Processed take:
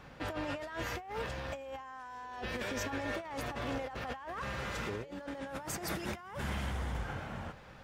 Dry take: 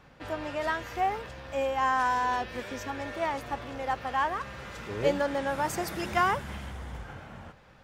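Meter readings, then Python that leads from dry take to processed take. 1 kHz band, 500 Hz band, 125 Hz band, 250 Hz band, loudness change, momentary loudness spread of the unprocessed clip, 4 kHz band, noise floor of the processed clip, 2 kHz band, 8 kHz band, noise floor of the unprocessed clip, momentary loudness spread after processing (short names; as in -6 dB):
-13.0 dB, -9.0 dB, -0.5 dB, -4.0 dB, -9.0 dB, 15 LU, -4.0 dB, -52 dBFS, -7.5 dB, -2.0 dB, -55 dBFS, 7 LU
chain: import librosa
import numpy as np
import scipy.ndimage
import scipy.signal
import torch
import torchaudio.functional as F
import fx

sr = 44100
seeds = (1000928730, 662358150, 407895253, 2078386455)

y = fx.over_compress(x, sr, threshold_db=-38.0, ratio=-1.0)
y = F.gain(torch.from_numpy(y), -2.5).numpy()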